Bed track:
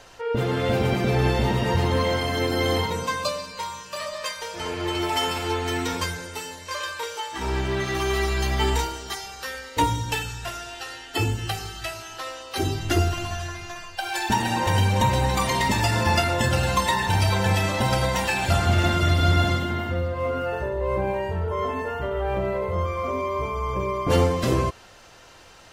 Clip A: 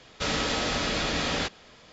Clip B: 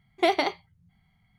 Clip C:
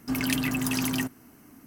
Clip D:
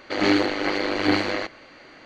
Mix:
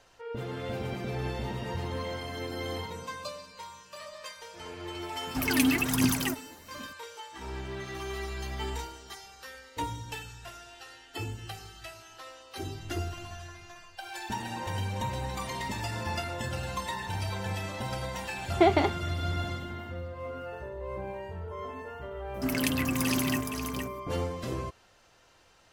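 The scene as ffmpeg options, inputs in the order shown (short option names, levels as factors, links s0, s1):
-filter_complex "[3:a]asplit=2[s0][s1];[0:a]volume=0.237[s2];[s0]aphaser=in_gain=1:out_gain=1:delay=4.1:decay=0.67:speed=1.3:type=triangular[s3];[2:a]aemphasis=mode=reproduction:type=riaa[s4];[s1]aecho=1:1:467:0.473[s5];[s3]atrim=end=1.66,asetpts=PTS-STARTPTS,volume=0.841,afade=t=in:d=0.004:c=hsin,afade=t=out:st=1.656:d=0.004:c=hsin,adelay=5270[s6];[s4]atrim=end=1.38,asetpts=PTS-STARTPTS,volume=0.891,afade=t=in:d=0.004:c=hsin,afade=t=out:st=1.376:d=0.004:c=hsin,adelay=18380[s7];[s5]atrim=end=1.66,asetpts=PTS-STARTPTS,volume=0.794,afade=t=in:d=0.004:c=hsin,afade=t=out:st=1.656:d=0.004:c=hsin,adelay=22340[s8];[s2][s6][s7][s8]amix=inputs=4:normalize=0"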